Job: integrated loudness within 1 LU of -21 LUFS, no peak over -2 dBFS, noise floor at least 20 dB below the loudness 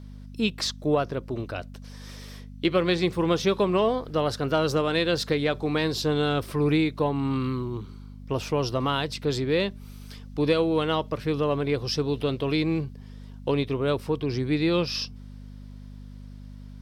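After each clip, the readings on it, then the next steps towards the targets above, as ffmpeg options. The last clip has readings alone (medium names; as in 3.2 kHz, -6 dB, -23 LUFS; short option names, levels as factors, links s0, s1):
hum 50 Hz; highest harmonic 250 Hz; hum level -40 dBFS; loudness -26.0 LUFS; peak level -11.0 dBFS; loudness target -21.0 LUFS
-> -af "bandreject=f=50:t=h:w=4,bandreject=f=100:t=h:w=4,bandreject=f=150:t=h:w=4,bandreject=f=200:t=h:w=4,bandreject=f=250:t=h:w=4"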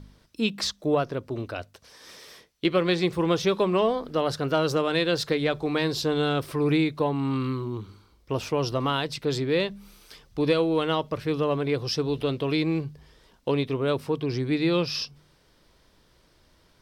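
hum not found; loudness -26.0 LUFS; peak level -11.0 dBFS; loudness target -21.0 LUFS
-> -af "volume=1.78"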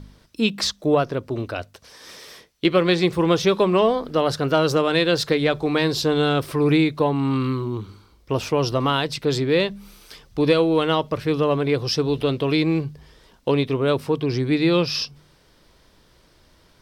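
loudness -21.0 LUFS; peak level -6.0 dBFS; noise floor -57 dBFS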